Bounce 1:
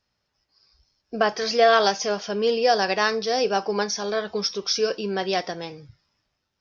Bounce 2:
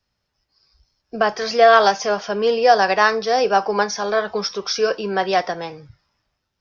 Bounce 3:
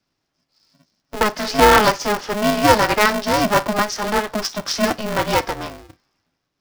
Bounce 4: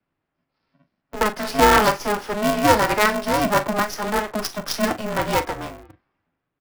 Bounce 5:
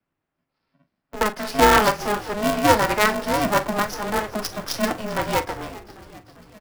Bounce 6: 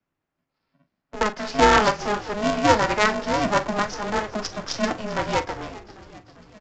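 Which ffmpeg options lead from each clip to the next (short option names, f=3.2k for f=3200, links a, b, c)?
-filter_complex "[0:a]acrossover=split=210|590|1800[a][b][c][d];[c]dynaudnorm=f=570:g=5:m=11.5dB[e];[a][b][e][d]amix=inputs=4:normalize=0,lowshelf=f=99:g=7"
-af "aeval=exprs='val(0)*sgn(sin(2*PI*210*n/s))':c=same"
-filter_complex "[0:a]asplit=2[a][b];[b]adelay=41,volume=-12dB[c];[a][c]amix=inputs=2:normalize=0,acrossover=split=130|1100|2900[d][e][f][g];[g]acrusher=bits=4:dc=4:mix=0:aa=0.000001[h];[d][e][f][h]amix=inputs=4:normalize=0,volume=-2.5dB"
-filter_complex "[0:a]asplit=7[a][b][c][d][e][f][g];[b]adelay=396,afreqshift=-100,volume=-17.5dB[h];[c]adelay=792,afreqshift=-200,volume=-21.5dB[i];[d]adelay=1188,afreqshift=-300,volume=-25.5dB[j];[e]adelay=1584,afreqshift=-400,volume=-29.5dB[k];[f]adelay=1980,afreqshift=-500,volume=-33.6dB[l];[g]adelay=2376,afreqshift=-600,volume=-37.6dB[m];[a][h][i][j][k][l][m]amix=inputs=7:normalize=0,aeval=exprs='0.944*(cos(1*acos(clip(val(0)/0.944,-1,1)))-cos(1*PI/2))+0.0299*(cos(7*acos(clip(val(0)/0.944,-1,1)))-cos(7*PI/2))':c=same"
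-af "aresample=16000,aresample=44100,volume=-1dB"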